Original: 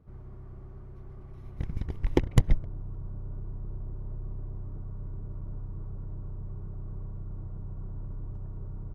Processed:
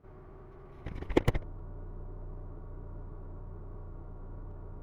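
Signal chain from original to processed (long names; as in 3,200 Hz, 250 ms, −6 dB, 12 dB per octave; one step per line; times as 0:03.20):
stylus tracing distortion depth 0.077 ms
bass and treble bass −12 dB, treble −8 dB
phase-vocoder stretch with locked phases 0.54×
level +6 dB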